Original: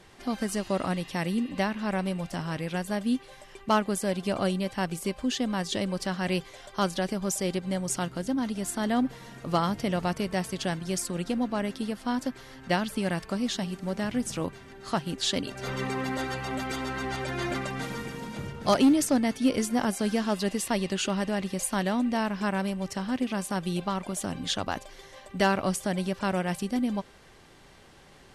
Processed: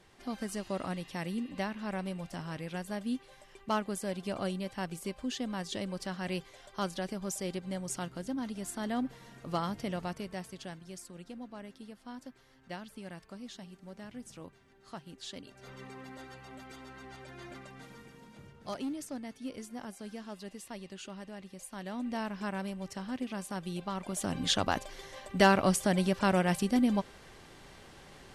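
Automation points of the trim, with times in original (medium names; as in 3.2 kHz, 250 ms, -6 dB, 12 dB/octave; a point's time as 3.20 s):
9.88 s -7.5 dB
10.99 s -16.5 dB
21.71 s -16.5 dB
22.12 s -8 dB
23.84 s -8 dB
24.44 s +1 dB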